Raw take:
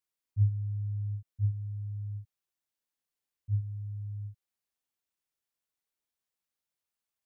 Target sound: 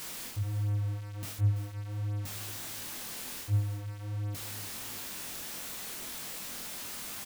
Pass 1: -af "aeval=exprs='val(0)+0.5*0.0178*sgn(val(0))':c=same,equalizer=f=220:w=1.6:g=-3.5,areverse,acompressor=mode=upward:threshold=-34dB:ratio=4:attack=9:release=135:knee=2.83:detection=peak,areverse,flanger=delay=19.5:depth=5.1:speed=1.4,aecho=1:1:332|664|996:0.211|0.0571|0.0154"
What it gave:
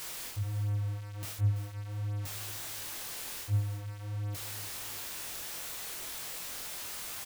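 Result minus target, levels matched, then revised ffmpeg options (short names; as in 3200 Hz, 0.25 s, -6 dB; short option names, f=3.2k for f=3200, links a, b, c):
250 Hz band -3.5 dB
-af "aeval=exprs='val(0)+0.5*0.0178*sgn(val(0))':c=same,equalizer=f=220:w=1.6:g=6.5,areverse,acompressor=mode=upward:threshold=-34dB:ratio=4:attack=9:release=135:knee=2.83:detection=peak,areverse,flanger=delay=19.5:depth=5.1:speed=1.4,aecho=1:1:332|664|996:0.211|0.0571|0.0154"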